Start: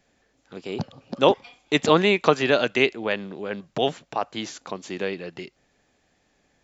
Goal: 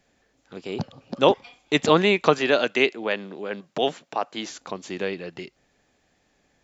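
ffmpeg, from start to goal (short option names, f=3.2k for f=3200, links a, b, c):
-filter_complex "[0:a]asettb=1/sr,asplit=3[a][b][c];[a]atrim=end=2.384[d];[b]atrim=start=2.38:end=4.51,asetpts=PTS-STARTPTS,afade=t=in:d=0.004:c=qsin,afade=t=out:st=2.126:d=0.004:c=qsin,highpass=200[e];[c]atrim=start=4.506[f];[d][e]acrossfade=d=0.004:c1=hsin:c2=qsin[g];[g][f]acrossfade=d=0.004:c1=qsin:c2=hsin"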